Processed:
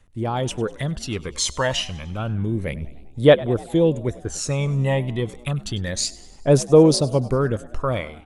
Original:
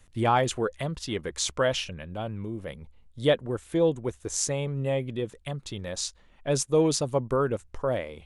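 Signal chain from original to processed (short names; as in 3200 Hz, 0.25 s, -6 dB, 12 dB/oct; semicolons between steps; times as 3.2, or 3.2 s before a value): 4.13–4.74 high shelf 3900 Hz -10.5 dB; AGC gain up to 15 dB; phaser 0.3 Hz, delay 1.1 ms, feedback 57%; on a send: frequency-shifting echo 99 ms, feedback 58%, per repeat +59 Hz, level -20.5 dB; on the sum: gain -6.5 dB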